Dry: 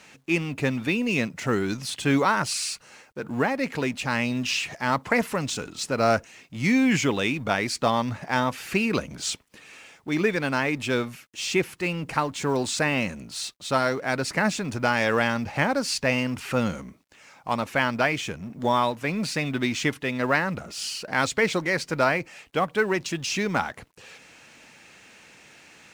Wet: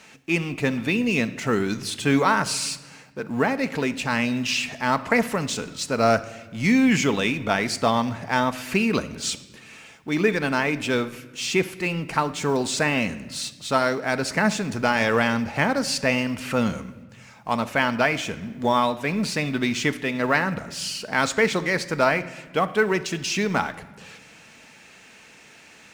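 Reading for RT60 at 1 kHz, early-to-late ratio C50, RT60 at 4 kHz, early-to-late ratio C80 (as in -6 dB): 1.1 s, 15.0 dB, 1.0 s, 17.5 dB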